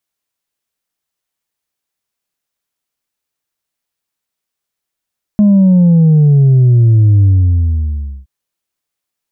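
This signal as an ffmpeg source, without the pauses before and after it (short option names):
-f lavfi -i "aevalsrc='0.562*clip((2.87-t)/1.03,0,1)*tanh(1.26*sin(2*PI*210*2.87/log(65/210)*(exp(log(65/210)*t/2.87)-1)))/tanh(1.26)':d=2.87:s=44100"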